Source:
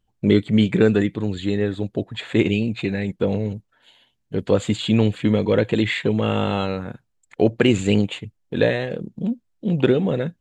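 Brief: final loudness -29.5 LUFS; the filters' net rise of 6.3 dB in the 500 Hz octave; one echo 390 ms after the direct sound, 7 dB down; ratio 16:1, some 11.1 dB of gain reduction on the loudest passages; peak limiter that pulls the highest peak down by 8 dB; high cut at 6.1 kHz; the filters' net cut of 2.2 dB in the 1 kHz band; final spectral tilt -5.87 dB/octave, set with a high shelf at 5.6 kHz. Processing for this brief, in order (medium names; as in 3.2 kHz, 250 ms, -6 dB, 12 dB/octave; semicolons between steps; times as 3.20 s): low-pass 6.1 kHz; peaking EQ 500 Hz +9 dB; peaking EQ 1 kHz -8 dB; treble shelf 5.6 kHz +5.5 dB; compression 16:1, threshold -17 dBFS; peak limiter -14 dBFS; delay 390 ms -7 dB; trim -4 dB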